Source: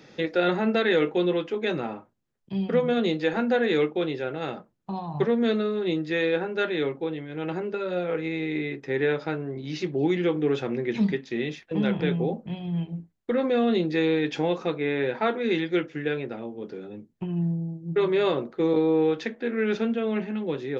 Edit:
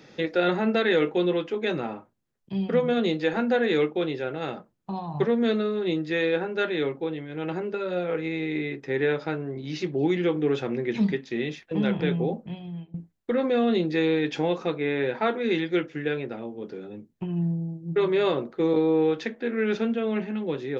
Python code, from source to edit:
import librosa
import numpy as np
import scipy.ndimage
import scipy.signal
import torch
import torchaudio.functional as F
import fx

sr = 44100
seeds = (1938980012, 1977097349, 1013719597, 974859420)

y = fx.edit(x, sr, fx.fade_out_to(start_s=12.35, length_s=0.59, floor_db=-19.0), tone=tone)